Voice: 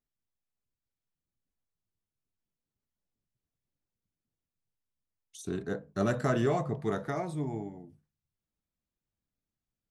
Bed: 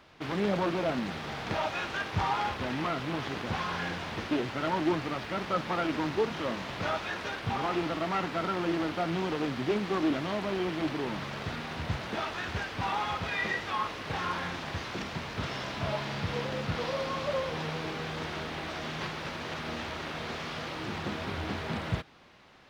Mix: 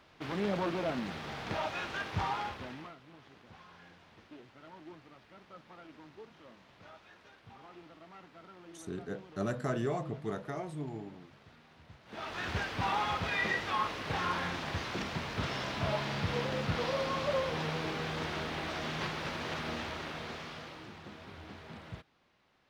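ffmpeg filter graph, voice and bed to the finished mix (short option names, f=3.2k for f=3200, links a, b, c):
-filter_complex "[0:a]adelay=3400,volume=-5.5dB[a];[1:a]volume=18dB,afade=t=out:st=2.22:d=0.75:silence=0.11885,afade=t=in:st=12.05:d=0.45:silence=0.0794328,afade=t=out:st=19.56:d=1.39:silence=0.211349[b];[a][b]amix=inputs=2:normalize=0"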